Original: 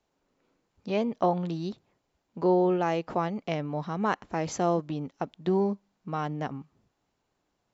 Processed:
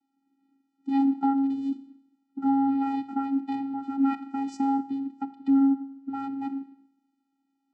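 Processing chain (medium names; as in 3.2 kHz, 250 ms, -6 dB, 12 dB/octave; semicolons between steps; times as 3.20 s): coarse spectral quantiser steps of 15 dB; Schroeder reverb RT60 0.79 s, combs from 25 ms, DRR 13.5 dB; vocoder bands 8, square 273 Hz; trim +3.5 dB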